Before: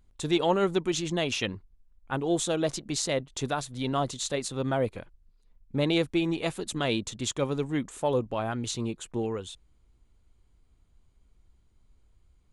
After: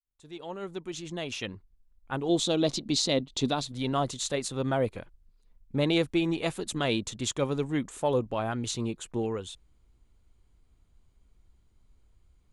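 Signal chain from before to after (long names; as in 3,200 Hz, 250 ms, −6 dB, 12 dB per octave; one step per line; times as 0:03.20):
fade in at the beginning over 2.67 s
0:02.29–0:03.72: graphic EQ with 15 bands 250 Hz +8 dB, 1,600 Hz −6 dB, 4,000 Hz +9 dB, 10,000 Hz −7 dB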